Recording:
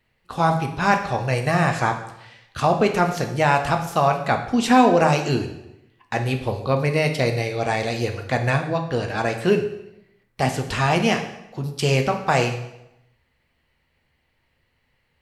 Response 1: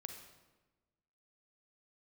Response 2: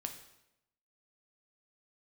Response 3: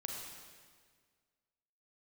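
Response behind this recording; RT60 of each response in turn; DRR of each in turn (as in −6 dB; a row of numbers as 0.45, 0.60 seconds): 2; 1.2, 0.85, 1.7 seconds; 4.5, 4.5, 0.0 decibels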